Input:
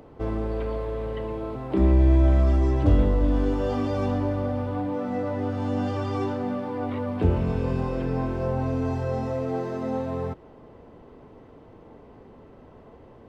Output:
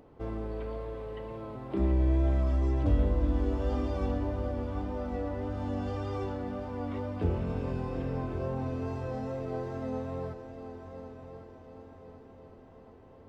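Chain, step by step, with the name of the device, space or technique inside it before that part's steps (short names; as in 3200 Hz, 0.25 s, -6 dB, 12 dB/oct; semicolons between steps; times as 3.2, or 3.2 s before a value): multi-head tape echo (multi-head echo 0.368 s, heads second and third, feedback 54%, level -12 dB; wow and flutter 22 cents); gain -8 dB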